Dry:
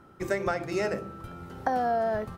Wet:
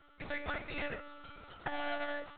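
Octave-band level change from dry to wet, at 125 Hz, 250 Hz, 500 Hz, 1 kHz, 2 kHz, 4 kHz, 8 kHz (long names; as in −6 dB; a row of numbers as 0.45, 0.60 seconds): −12.5 dB, −12.0 dB, −14.0 dB, −13.0 dB, −3.0 dB, 0.0 dB, below −30 dB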